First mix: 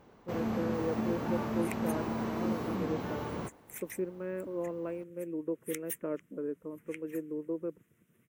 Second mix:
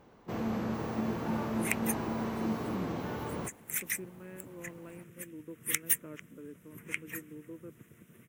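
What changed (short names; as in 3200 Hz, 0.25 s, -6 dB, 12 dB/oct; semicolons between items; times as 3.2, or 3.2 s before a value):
speech: add bell 580 Hz -15 dB 2.4 oct; second sound +11.5 dB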